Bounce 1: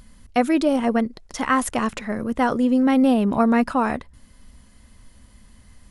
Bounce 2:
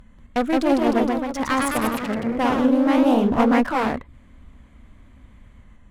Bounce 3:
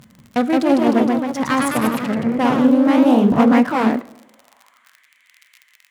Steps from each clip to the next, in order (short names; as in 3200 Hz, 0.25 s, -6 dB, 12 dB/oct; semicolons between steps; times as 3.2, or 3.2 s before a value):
Wiener smoothing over 9 samples; one-sided clip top -26 dBFS; echoes that change speed 0.187 s, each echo +1 st, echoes 3
crackle 60/s -33 dBFS; high-pass sweep 140 Hz -> 2100 Hz, 3.65–5.09; reverb RT60 0.85 s, pre-delay 6 ms, DRR 15.5 dB; gain +2 dB